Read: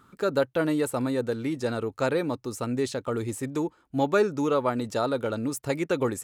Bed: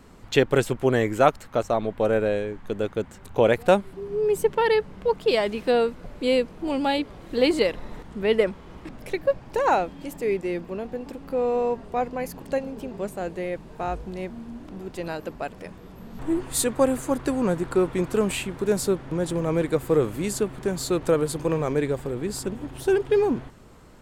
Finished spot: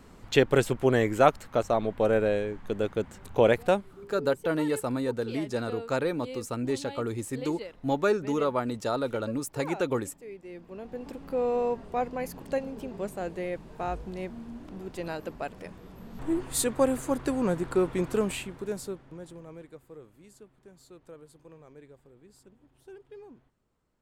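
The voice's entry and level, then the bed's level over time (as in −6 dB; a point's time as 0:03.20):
3.90 s, −2.5 dB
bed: 0:03.50 −2 dB
0:04.38 −18.5 dB
0:10.37 −18.5 dB
0:11.07 −3.5 dB
0:18.15 −3.5 dB
0:19.95 −27 dB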